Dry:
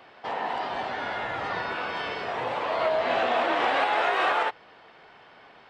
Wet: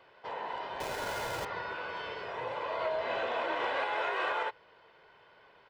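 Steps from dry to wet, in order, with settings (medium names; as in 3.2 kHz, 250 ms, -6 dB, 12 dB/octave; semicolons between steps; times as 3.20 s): 0.80–1.45 s: square wave that keeps the level; treble shelf 6.2 kHz -6 dB; comb 2 ms, depth 50%; trim -8.5 dB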